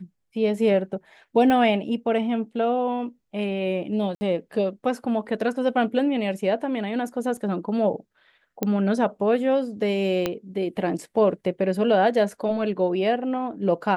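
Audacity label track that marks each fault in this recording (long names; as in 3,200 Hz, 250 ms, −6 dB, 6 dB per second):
1.500000	1.500000	click −12 dBFS
4.150000	4.210000	drop-out 60 ms
7.370000	7.370000	drop-out 3.8 ms
8.630000	8.630000	click −10 dBFS
10.260000	10.260000	click −10 dBFS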